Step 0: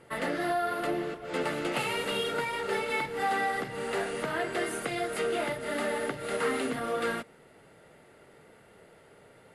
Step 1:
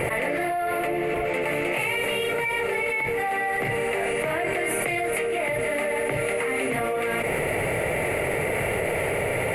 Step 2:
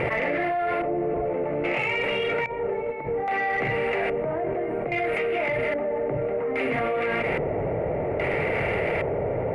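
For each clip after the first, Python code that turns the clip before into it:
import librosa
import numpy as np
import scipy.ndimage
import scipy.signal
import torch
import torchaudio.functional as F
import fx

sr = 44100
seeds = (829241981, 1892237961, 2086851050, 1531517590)

y1 = fx.curve_eq(x, sr, hz=(110.0, 220.0, 610.0, 1500.0, 2300.0, 3400.0, 5500.0, 13000.0), db=(0, -9, 0, -10, 7, -12, -16, 4))
y1 = fx.env_flatten(y1, sr, amount_pct=100)
y2 = fx.filter_lfo_lowpass(y1, sr, shape='square', hz=0.61, low_hz=780.0, high_hz=2800.0, q=0.78)
y2 = fx.cheby_harmonics(y2, sr, harmonics=(5,), levels_db=(-31,), full_scale_db=-13.5)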